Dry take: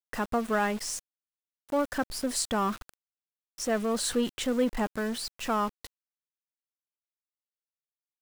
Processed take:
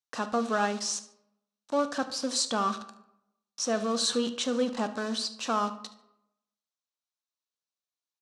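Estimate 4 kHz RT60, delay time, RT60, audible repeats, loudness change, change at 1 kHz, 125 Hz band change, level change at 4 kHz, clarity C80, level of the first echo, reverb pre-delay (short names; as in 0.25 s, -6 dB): 0.45 s, 73 ms, 0.85 s, 1, +0.5 dB, +1.0 dB, n/a, +5.0 dB, 16.0 dB, -18.5 dB, 9 ms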